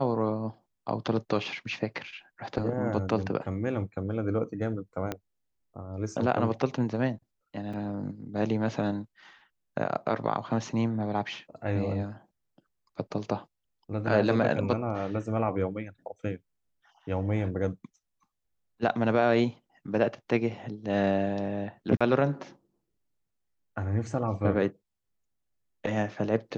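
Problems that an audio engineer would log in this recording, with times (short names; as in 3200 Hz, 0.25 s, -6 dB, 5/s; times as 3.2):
5.12 pop -17 dBFS
7.73–7.74 gap 5.2 ms
21.97–22.01 gap 36 ms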